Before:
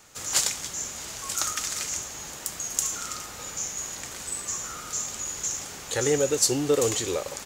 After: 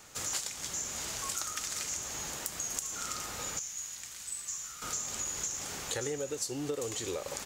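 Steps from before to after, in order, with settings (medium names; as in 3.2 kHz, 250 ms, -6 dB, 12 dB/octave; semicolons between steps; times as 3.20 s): 3.59–4.82 s: amplifier tone stack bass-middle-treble 5-5-5; compression 12:1, threshold -32 dBFS, peak gain reduction 16 dB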